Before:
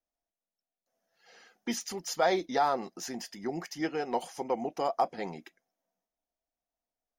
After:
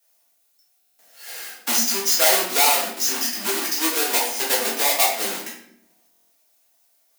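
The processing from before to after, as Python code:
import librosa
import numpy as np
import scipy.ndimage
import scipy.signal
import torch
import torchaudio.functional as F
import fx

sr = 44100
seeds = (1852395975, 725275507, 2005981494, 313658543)

p1 = fx.halfwave_hold(x, sr)
p2 = scipy.signal.sosfilt(scipy.signal.butter(16, 190.0, 'highpass', fs=sr, output='sos'), p1)
p3 = fx.tilt_eq(p2, sr, slope=4.5)
p4 = np.clip(p3, -10.0 ** (-11.0 / 20.0), 10.0 ** (-11.0 / 20.0))
p5 = p3 + (p4 * librosa.db_to_amplitude(-9.0))
p6 = fx.room_shoebox(p5, sr, seeds[0], volume_m3=94.0, walls='mixed', distance_m=1.7)
p7 = fx.buffer_glitch(p6, sr, at_s=(0.78, 6.1), block=1024, repeats=8)
p8 = fx.band_squash(p7, sr, depth_pct=40)
y = p8 * librosa.db_to_amplitude(-5.5)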